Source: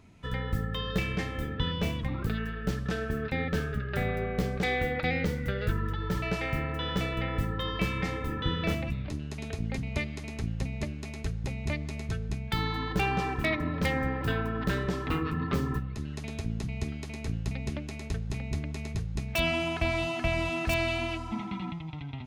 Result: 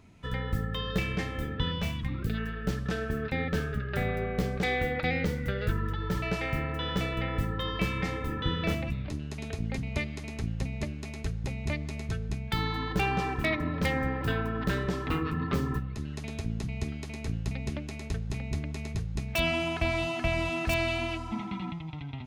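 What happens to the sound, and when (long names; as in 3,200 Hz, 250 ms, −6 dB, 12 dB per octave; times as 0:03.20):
0:01.79–0:02.33: parametric band 320 Hz → 1,100 Hz −14 dB 0.88 octaves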